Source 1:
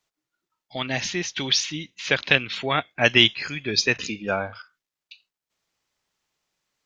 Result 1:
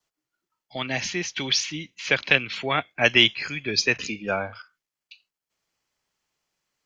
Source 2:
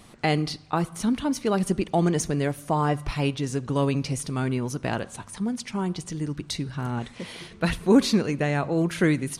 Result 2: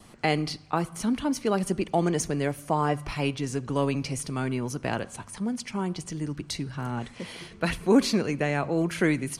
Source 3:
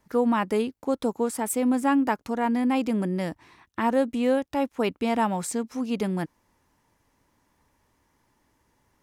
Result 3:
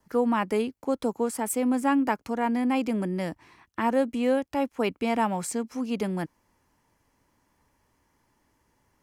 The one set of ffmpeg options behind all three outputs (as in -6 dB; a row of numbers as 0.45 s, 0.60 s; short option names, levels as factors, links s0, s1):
-filter_complex "[0:a]adynamicequalizer=threshold=0.00631:dfrequency=2300:dqfactor=7.7:tfrequency=2300:tqfactor=7.7:attack=5:release=100:ratio=0.375:range=2:mode=boostabove:tftype=bell,acrossover=split=210[s0][s1];[s0]asoftclip=type=tanh:threshold=0.0299[s2];[s1]bandreject=f=3700:w=13[s3];[s2][s3]amix=inputs=2:normalize=0,volume=0.891"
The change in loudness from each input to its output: -0.5 LU, -2.0 LU, -1.5 LU